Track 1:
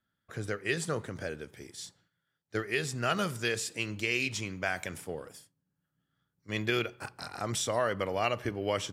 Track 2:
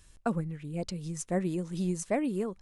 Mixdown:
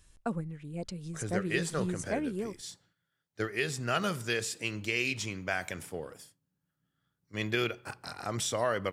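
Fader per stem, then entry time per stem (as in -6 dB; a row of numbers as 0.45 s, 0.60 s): -0.5 dB, -3.5 dB; 0.85 s, 0.00 s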